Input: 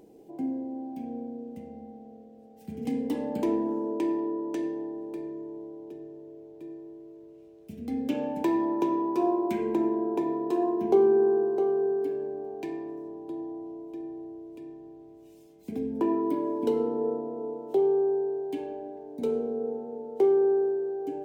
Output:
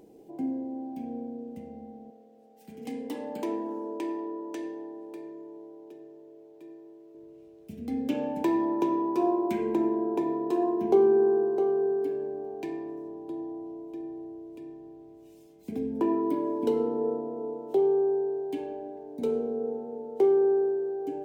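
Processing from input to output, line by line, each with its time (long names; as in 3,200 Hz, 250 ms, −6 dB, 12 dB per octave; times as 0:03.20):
0:02.10–0:07.15: high-pass filter 530 Hz 6 dB per octave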